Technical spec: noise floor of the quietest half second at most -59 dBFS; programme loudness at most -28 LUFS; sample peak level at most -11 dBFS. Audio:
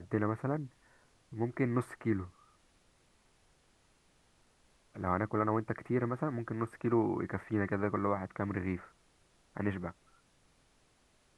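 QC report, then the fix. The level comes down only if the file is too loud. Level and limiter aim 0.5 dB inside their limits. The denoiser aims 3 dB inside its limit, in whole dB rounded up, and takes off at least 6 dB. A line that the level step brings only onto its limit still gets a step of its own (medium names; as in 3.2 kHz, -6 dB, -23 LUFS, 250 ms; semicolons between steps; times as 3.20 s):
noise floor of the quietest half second -69 dBFS: pass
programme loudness -35.0 LUFS: pass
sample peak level -15.5 dBFS: pass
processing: none needed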